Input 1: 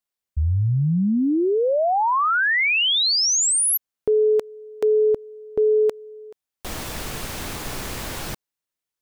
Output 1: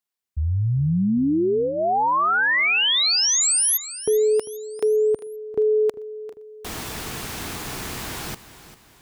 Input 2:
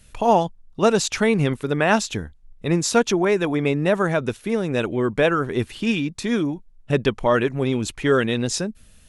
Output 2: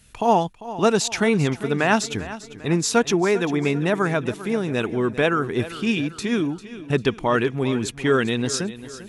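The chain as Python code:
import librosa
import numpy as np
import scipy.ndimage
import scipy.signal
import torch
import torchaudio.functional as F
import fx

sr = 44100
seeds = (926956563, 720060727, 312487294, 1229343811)

p1 = fx.highpass(x, sr, hz=67.0, slope=6)
p2 = fx.peak_eq(p1, sr, hz=560.0, db=-8.5, octaves=0.22)
y = p2 + fx.echo_feedback(p2, sr, ms=397, feedback_pct=44, wet_db=-15, dry=0)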